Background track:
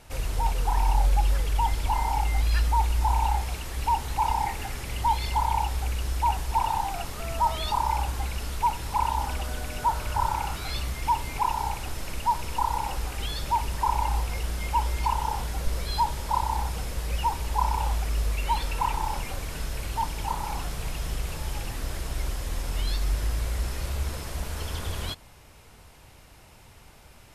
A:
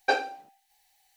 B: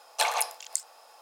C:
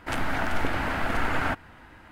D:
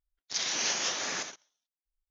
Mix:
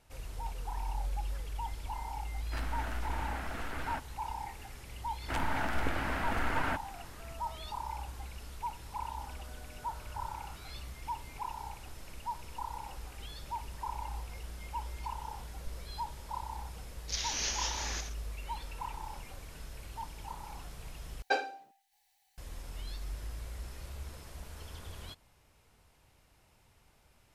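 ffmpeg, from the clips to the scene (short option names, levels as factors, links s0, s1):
-filter_complex "[3:a]asplit=2[s0][s1];[0:a]volume=0.2[s2];[s0]volume=10.6,asoftclip=hard,volume=0.0944[s3];[4:a]equalizer=f=870:t=o:w=2.9:g=-4.5[s4];[s2]asplit=2[s5][s6];[s5]atrim=end=21.224[s7];[1:a]atrim=end=1.16,asetpts=PTS-STARTPTS,volume=0.501[s8];[s6]atrim=start=22.376[s9];[s3]atrim=end=2.11,asetpts=PTS-STARTPTS,volume=0.237,afade=t=in:d=0.004:c=hsin,afade=t=out:st=2.106:d=0.004:c=hsin,adelay=2450[s10];[s1]atrim=end=2.11,asetpts=PTS-STARTPTS,volume=0.473,afade=t=in:d=0.004:c=hsin,afade=t=out:st=2.106:d=0.004:c=hsin,adelay=5220[s11];[s4]atrim=end=2.1,asetpts=PTS-STARTPTS,volume=0.668,afade=t=in:d=0.004:c=hsin,afade=t=out:st=2.096:d=0.004:c=hsin,adelay=16780[s12];[s7][s8]acrossfade=d=0.004:c1=hsin:c2=hsin[s13];[s13][s9]acrossfade=d=0.004:c1=hsin:c2=hsin[s14];[s14][s10][s11][s12]amix=inputs=4:normalize=0"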